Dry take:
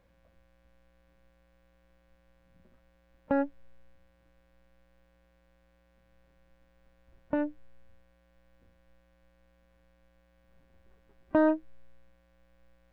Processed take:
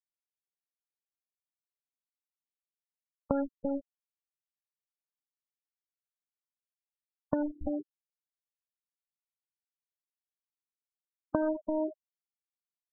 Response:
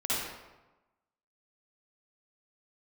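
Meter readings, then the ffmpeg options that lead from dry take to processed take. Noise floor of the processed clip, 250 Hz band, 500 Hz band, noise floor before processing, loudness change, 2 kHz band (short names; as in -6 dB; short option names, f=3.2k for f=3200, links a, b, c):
under -85 dBFS, -2.0 dB, -2.0 dB, -67 dBFS, -4.0 dB, -9.0 dB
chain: -filter_complex "[0:a]bandreject=f=860:w=13,asplit=2[a][b];[b]adelay=338.2,volume=-12dB,highshelf=f=4k:g=-7.61[c];[a][c]amix=inputs=2:normalize=0,afwtdn=0.00891,acompressor=threshold=-35dB:ratio=16,acrusher=bits=7:mix=0:aa=0.000001,asplit=2[d][e];[e]lowpass=f=1.1k:t=q:w=3.4[f];[1:a]atrim=start_sample=2205[g];[f][g]afir=irnorm=-1:irlink=0,volume=-26.5dB[h];[d][h]amix=inputs=2:normalize=0,afftfilt=real='re*gte(hypot(re,im),0.0178)':imag='im*gte(hypot(re,im),0.0178)':win_size=1024:overlap=0.75,volume=8.5dB"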